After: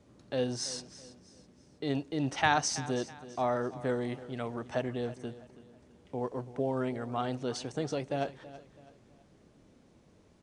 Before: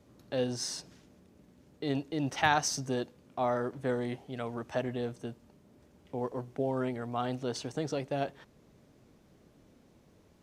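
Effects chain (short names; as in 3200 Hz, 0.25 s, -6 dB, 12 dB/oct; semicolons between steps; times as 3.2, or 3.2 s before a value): on a send: feedback echo 0.328 s, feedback 37%, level -16.5 dB; on the sum: downsampling 22050 Hz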